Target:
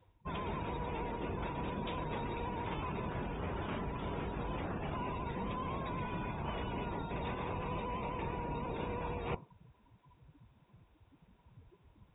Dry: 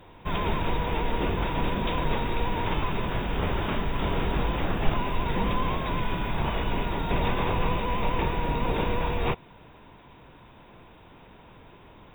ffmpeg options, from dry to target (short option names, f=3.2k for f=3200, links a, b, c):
-af "afftdn=nr=26:nf=-36,highpass=60,areverse,acompressor=threshold=-41dB:ratio=12,areverse,volume=5.5dB"